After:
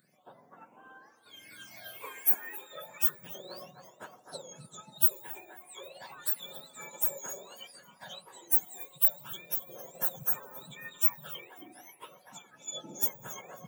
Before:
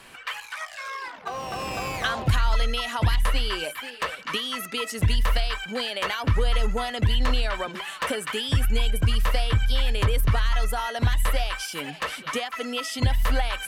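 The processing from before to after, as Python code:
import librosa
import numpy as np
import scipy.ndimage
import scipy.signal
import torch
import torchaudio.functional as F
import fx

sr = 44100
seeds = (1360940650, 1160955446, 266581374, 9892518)

y = fx.octave_mirror(x, sr, pivot_hz=1300.0)
y = fx.tilt_eq(y, sr, slope=3.5)
y = fx.quant_dither(y, sr, seeds[0], bits=10, dither='none')
y = fx.phaser_stages(y, sr, stages=8, low_hz=150.0, high_hz=4200.0, hz=0.32, feedback_pct=25)
y = fx.echo_alternate(y, sr, ms=135, hz=1000.0, feedback_pct=70, wet_db=-11.0)
y = fx.upward_expand(y, sr, threshold_db=-39.0, expansion=1.5)
y = y * 10.0 ** (-5.5 / 20.0)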